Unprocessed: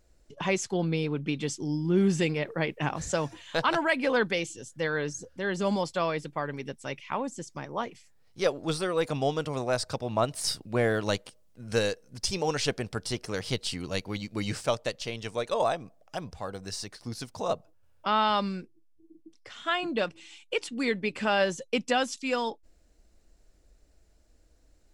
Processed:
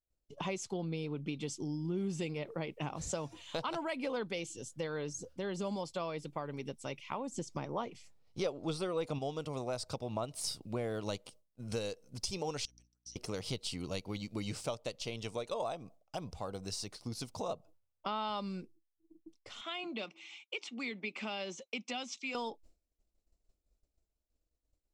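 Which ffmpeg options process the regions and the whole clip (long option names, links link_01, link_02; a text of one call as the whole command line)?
ffmpeg -i in.wav -filter_complex "[0:a]asettb=1/sr,asplit=3[link_01][link_02][link_03];[link_01]atrim=end=7.344[link_04];[link_02]atrim=start=7.34:end=9.19,asetpts=PTS-STARTPTS,afade=type=in:duration=0.004:curve=qsin,afade=type=out:start_time=1.846:duration=0.004:curve=qsin,highshelf=frequency=7900:gain=-9.5,acontrast=64[link_05];[link_03]atrim=start=9.186[link_06];[link_04][link_05]acrossfade=duration=0.004:curve1=hsin:curve2=qsin[link_07];[link_07][link_06]acrossfade=duration=0.004:curve1=qsin:curve2=hsin,asettb=1/sr,asplit=3[link_08][link_09][link_10];[link_08]atrim=end=12.654[link_11];[link_09]atrim=start=12.65:end=13.16,asetpts=PTS-STARTPTS,afade=type=in:duration=0.004:curve=qsin,afade=type=out:start_time=0.506:duration=0.004:curve=qsin,bandpass=frequency=5900:width_type=q:width=18,aeval=exprs='val(0)+0.001*(sin(2*PI*60*n/s)+sin(2*PI*2*60*n/s)/2+sin(2*PI*3*60*n/s)/3+sin(2*PI*4*60*n/s)/4+sin(2*PI*5*60*n/s)/5)':channel_layout=same[link_12];[link_10]atrim=start=13.156[link_13];[link_11][link_12]acrossfade=duration=0.004:curve1=hsin:curve2=qsin[link_14];[link_14][link_13]acrossfade=duration=0.004:curve1=qsin:curve2=hsin,asettb=1/sr,asplit=3[link_15][link_16][link_17];[link_15]atrim=end=19.614[link_18];[link_16]atrim=start=19.61:end=22.35,asetpts=PTS-STARTPTS,afade=type=in:duration=0.004:curve=qsin,afade=type=out:start_time=2.736:duration=0.004:curve=qsin,acrossover=split=380|3000[link_19][link_20][link_21];[link_20]acompressor=threshold=-44dB:ratio=2.5:attack=3.2:release=140:knee=2.83:detection=peak[link_22];[link_19][link_22][link_21]amix=inputs=3:normalize=0,highpass=frequency=240:width=0.5412,highpass=frequency=240:width=1.3066,equalizer=frequency=290:width_type=q:width=4:gain=-9,equalizer=frequency=480:width_type=q:width=4:gain=-8,equalizer=frequency=770:width_type=q:width=4:gain=3,equalizer=frequency=1200:width_type=q:width=4:gain=4,equalizer=frequency=2200:width_type=q:width=4:gain=9,equalizer=frequency=4600:width_type=q:width=4:gain=-6,lowpass=frequency=6100:width=0.5412,lowpass=frequency=6100:width=1.3066[link_23];[link_17]atrim=start=22.346[link_24];[link_18][link_23]acrossfade=duration=0.004:curve1=hsin:curve2=qsin[link_25];[link_25][link_24]acrossfade=duration=0.004:curve1=qsin:curve2=hsin,agate=range=-33dB:threshold=-47dB:ratio=3:detection=peak,equalizer=frequency=1700:width=3.3:gain=-11,acompressor=threshold=-35dB:ratio=3,volume=-1.5dB" out.wav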